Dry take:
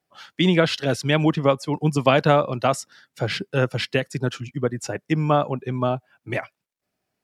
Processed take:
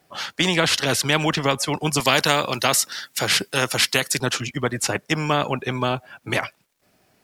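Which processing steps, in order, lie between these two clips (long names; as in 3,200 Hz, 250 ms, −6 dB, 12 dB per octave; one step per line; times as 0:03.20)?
0:02.00–0:04.20: spectral tilt +2.5 dB per octave
every bin compressed towards the loudest bin 2 to 1
level +2 dB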